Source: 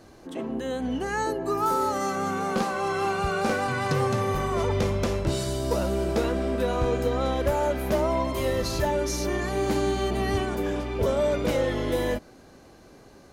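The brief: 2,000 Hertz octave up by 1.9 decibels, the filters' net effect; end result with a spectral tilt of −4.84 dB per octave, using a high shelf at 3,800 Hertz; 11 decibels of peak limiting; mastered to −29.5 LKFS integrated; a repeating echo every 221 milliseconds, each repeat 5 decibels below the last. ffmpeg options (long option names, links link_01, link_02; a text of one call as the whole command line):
ffmpeg -i in.wav -af "equalizer=frequency=2000:width_type=o:gain=3.5,highshelf=frequency=3800:gain=-4,alimiter=level_in=1dB:limit=-24dB:level=0:latency=1,volume=-1dB,aecho=1:1:221|442|663|884|1105|1326|1547:0.562|0.315|0.176|0.0988|0.0553|0.031|0.0173,volume=2dB" out.wav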